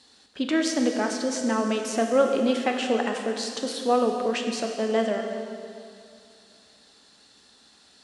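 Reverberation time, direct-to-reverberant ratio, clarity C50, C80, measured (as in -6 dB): 2.5 s, 2.5 dB, 4.0 dB, 5.0 dB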